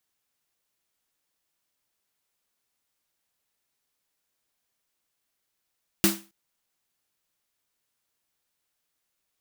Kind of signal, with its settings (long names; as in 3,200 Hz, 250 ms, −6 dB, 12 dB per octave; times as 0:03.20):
synth snare length 0.27 s, tones 200 Hz, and 330 Hz, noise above 540 Hz, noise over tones 0 dB, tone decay 0.30 s, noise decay 0.31 s